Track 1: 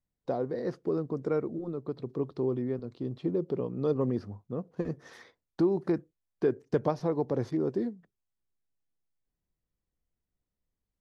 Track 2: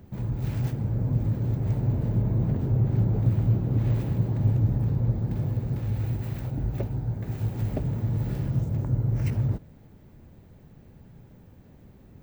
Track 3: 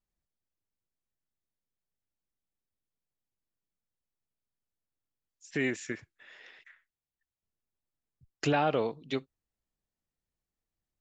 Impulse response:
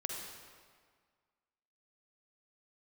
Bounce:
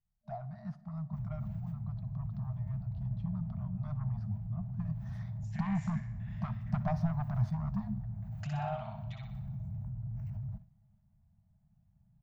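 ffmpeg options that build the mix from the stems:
-filter_complex "[0:a]aeval=exprs='0.237*sin(PI/2*2.24*val(0)/0.237)':channel_layout=same,volume=-12.5dB,afade=type=in:start_time=5.05:duration=0.28:silence=0.446684,asplit=3[link_01][link_02][link_03];[link_02]volume=-16.5dB[link_04];[link_03]volume=-19dB[link_05];[1:a]acompressor=threshold=-25dB:ratio=6,alimiter=level_in=4dB:limit=-24dB:level=0:latency=1:release=15,volume=-4dB,adelay=1000,volume=-14.5dB,asplit=2[link_06][link_07];[link_07]volume=-21.5dB[link_08];[2:a]volume=-5.5dB,asplit=3[link_09][link_10][link_11];[link_10]volume=-15.5dB[link_12];[link_11]volume=-6.5dB[link_13];[link_06][link_09]amix=inputs=2:normalize=0,agate=range=-14dB:threshold=-56dB:ratio=16:detection=peak,acompressor=threshold=-43dB:ratio=6,volume=0dB[link_14];[3:a]atrim=start_sample=2205[link_15];[link_04][link_08][link_12]amix=inputs=3:normalize=0[link_16];[link_16][link_15]afir=irnorm=-1:irlink=0[link_17];[link_05][link_13]amix=inputs=2:normalize=0,aecho=0:1:61|122|183|244|305|366:1|0.46|0.212|0.0973|0.0448|0.0206[link_18];[link_01][link_14][link_17][link_18]amix=inputs=4:normalize=0,asoftclip=type=tanh:threshold=-25.5dB,afftfilt=real='re*(1-between(b*sr/4096,220,610))':imag='im*(1-between(b*sr/4096,220,610))':win_size=4096:overlap=0.75,tiltshelf=frequency=970:gain=9"

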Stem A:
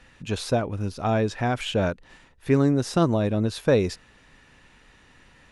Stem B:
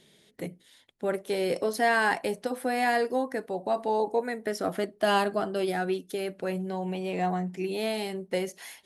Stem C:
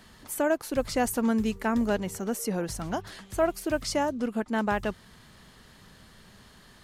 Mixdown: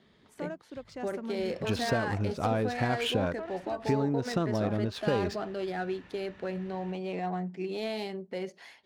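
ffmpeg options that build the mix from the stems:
ffmpeg -i stem1.wav -i stem2.wav -i stem3.wav -filter_complex "[0:a]acontrast=58,adelay=1400,volume=-4.5dB[link_01];[1:a]equalizer=frequency=4600:width_type=o:width=0.28:gain=6,alimiter=limit=-22dB:level=0:latency=1:release=81,volume=-3dB[link_02];[2:a]alimiter=limit=-17dB:level=0:latency=1:release=275,adynamicequalizer=threshold=0.00398:dfrequency=3900:dqfactor=0.7:tfrequency=3900:tqfactor=0.7:attack=5:release=100:ratio=0.375:range=2.5:mode=boostabove:tftype=highshelf,volume=-12dB[link_03];[link_01][link_03]amix=inputs=2:normalize=0,acompressor=threshold=-26dB:ratio=5,volume=0dB[link_04];[link_02][link_04]amix=inputs=2:normalize=0,highpass=65,adynamicsmooth=sensitivity=7:basefreq=3100" out.wav

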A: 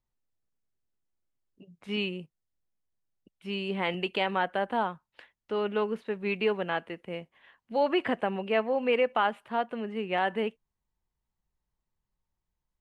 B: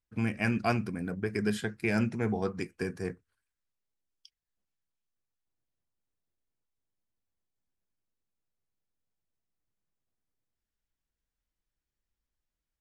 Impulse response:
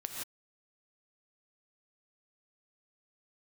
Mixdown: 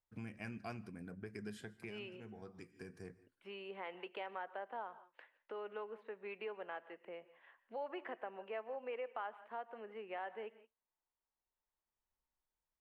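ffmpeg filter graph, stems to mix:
-filter_complex "[0:a]acrossover=split=350 2400:gain=0.0708 1 0.158[link_01][link_02][link_03];[link_01][link_02][link_03]amix=inputs=3:normalize=0,volume=-5.5dB,asplit=3[link_04][link_05][link_06];[link_05]volume=-14dB[link_07];[1:a]volume=-9dB,asplit=2[link_08][link_09];[link_09]volume=-20.5dB[link_10];[link_06]apad=whole_len=564660[link_11];[link_08][link_11]sidechaincompress=threshold=-57dB:ratio=4:attack=6.3:release=993[link_12];[2:a]atrim=start_sample=2205[link_13];[link_07][link_10]amix=inputs=2:normalize=0[link_14];[link_14][link_13]afir=irnorm=-1:irlink=0[link_15];[link_04][link_12][link_15]amix=inputs=3:normalize=0,acompressor=threshold=-50dB:ratio=2"

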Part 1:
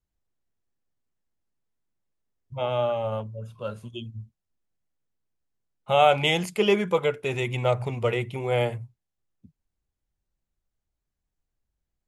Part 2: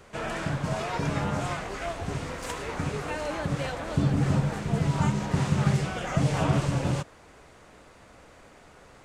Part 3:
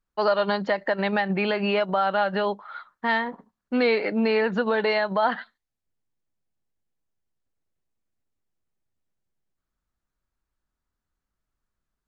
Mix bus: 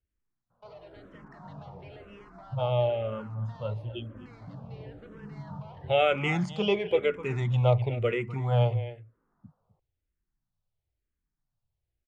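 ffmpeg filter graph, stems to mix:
ffmpeg -i stem1.wav -i stem2.wav -i stem3.wav -filter_complex "[0:a]equalizer=frequency=110:width_type=o:width=1:gain=8.5,volume=-1dB,asplit=3[link_01][link_02][link_03];[link_02]volume=-15dB[link_04];[1:a]lowpass=frequency=1300:width=0.5412,lowpass=frequency=1300:width=1.3066,flanger=delay=17:depth=7.7:speed=0.25,adelay=500,volume=-13.5dB,asplit=2[link_05][link_06];[link_06]volume=-5dB[link_07];[2:a]acompressor=threshold=-34dB:ratio=4,volume=35dB,asoftclip=hard,volume=-35dB,acrusher=bits=8:mix=0:aa=0.000001,adelay=450,volume=-11.5dB[link_08];[link_03]apad=whole_len=420741[link_09];[link_05][link_09]sidechaincompress=threshold=-28dB:ratio=8:attack=16:release=1340[link_10];[link_04][link_07]amix=inputs=2:normalize=0,aecho=0:1:254:1[link_11];[link_01][link_10][link_08][link_11]amix=inputs=4:normalize=0,lowpass=4200,asplit=2[link_12][link_13];[link_13]afreqshift=-1[link_14];[link_12][link_14]amix=inputs=2:normalize=1" out.wav

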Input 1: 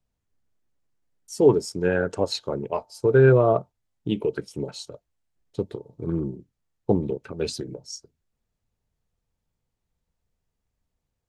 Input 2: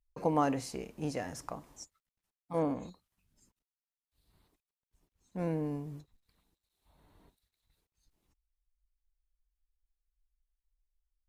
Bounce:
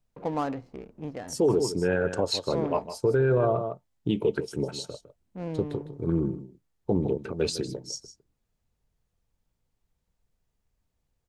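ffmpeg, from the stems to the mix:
ffmpeg -i stem1.wav -i stem2.wav -filter_complex "[0:a]volume=1dB,asplit=2[link_01][link_02];[link_02]volume=-13.5dB[link_03];[1:a]adynamicsmooth=sensitivity=7.5:basefreq=680,volume=-0.5dB[link_04];[link_03]aecho=0:1:156:1[link_05];[link_01][link_04][link_05]amix=inputs=3:normalize=0,alimiter=limit=-15dB:level=0:latency=1:release=26" out.wav

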